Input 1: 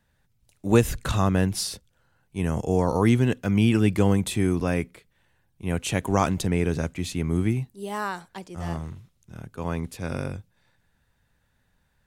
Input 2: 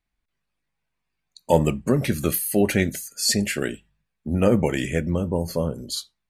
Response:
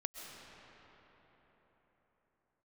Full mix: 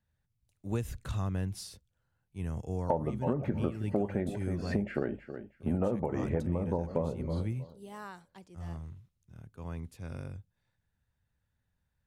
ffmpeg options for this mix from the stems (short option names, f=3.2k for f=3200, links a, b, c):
-filter_complex "[0:a]equalizer=f=82:t=o:w=1.8:g=9,volume=-15.5dB[a];[1:a]agate=range=-33dB:threshold=-37dB:ratio=3:detection=peak,lowpass=f=940:t=q:w=1.8,adelay=1400,volume=0dB,asplit=2[b][c];[c]volume=-17dB,aecho=0:1:319|638|957|1276:1|0.22|0.0484|0.0106[d];[a][b][d]amix=inputs=3:normalize=0,acompressor=threshold=-26dB:ratio=16"